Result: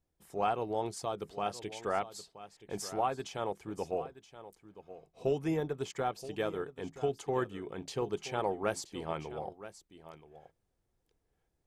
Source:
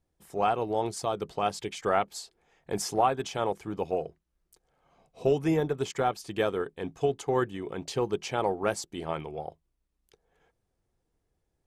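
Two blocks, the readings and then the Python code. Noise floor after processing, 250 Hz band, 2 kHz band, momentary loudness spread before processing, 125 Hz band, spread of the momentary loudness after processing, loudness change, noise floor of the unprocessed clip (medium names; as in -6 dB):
-80 dBFS, -6.0 dB, -6.0 dB, 10 LU, -6.0 dB, 19 LU, -6.0 dB, -79 dBFS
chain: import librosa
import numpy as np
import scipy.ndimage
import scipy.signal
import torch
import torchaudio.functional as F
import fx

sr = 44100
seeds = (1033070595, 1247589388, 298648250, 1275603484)

y = fx.rider(x, sr, range_db=4, speed_s=2.0)
y = y + 10.0 ** (-14.5 / 20.0) * np.pad(y, (int(975 * sr / 1000.0), 0))[:len(y)]
y = F.gain(torch.from_numpy(y), -6.5).numpy()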